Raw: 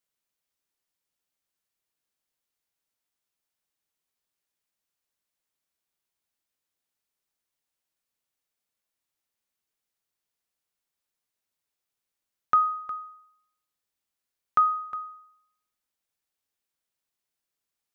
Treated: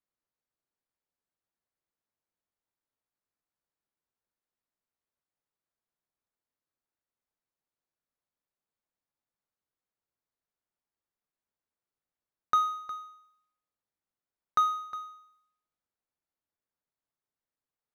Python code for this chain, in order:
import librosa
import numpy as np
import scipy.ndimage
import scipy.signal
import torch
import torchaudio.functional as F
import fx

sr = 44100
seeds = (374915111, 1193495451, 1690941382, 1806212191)

y = scipy.ndimage.median_filter(x, 15, mode='constant')
y = y * 10.0 ** (-3.0 / 20.0)